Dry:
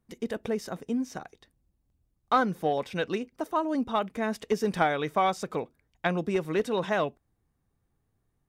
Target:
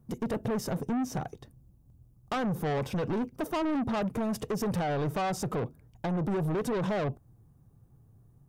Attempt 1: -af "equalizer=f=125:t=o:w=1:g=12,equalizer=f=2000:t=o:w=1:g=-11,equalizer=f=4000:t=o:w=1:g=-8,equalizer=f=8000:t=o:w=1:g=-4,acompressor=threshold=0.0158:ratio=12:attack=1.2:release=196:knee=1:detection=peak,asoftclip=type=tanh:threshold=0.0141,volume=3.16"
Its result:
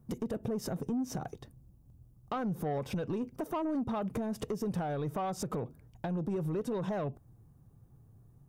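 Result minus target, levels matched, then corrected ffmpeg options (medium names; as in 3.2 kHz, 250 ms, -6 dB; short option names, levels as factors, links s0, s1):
compression: peak gain reduction +10 dB
-af "equalizer=f=125:t=o:w=1:g=12,equalizer=f=2000:t=o:w=1:g=-11,equalizer=f=4000:t=o:w=1:g=-8,equalizer=f=8000:t=o:w=1:g=-4,acompressor=threshold=0.0562:ratio=12:attack=1.2:release=196:knee=1:detection=peak,asoftclip=type=tanh:threshold=0.0141,volume=3.16"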